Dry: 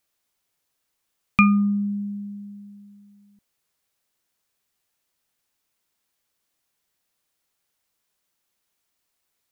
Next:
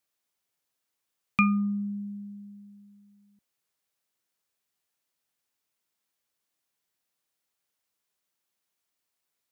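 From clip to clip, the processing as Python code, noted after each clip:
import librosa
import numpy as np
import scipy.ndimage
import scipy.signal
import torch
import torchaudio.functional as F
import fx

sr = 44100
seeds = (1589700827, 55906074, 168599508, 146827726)

y = fx.highpass(x, sr, hz=93.0, slope=6)
y = y * 10.0 ** (-6.0 / 20.0)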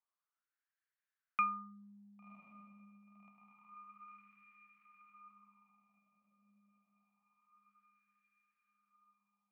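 y = fx.echo_diffused(x, sr, ms=1088, feedback_pct=57, wet_db=-11.0)
y = fx.wah_lfo(y, sr, hz=0.27, low_hz=560.0, high_hz=1700.0, q=5.0)
y = y * 10.0 ** (1.5 / 20.0)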